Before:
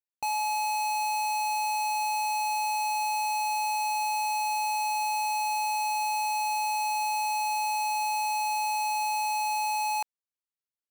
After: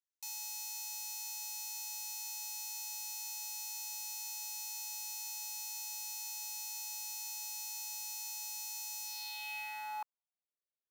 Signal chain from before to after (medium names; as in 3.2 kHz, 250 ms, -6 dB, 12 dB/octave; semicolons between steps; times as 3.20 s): careless resampling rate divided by 3×, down none, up zero stuff; band-pass sweep 6.2 kHz -> 490 Hz, 9.03–10.53 s; trim -4 dB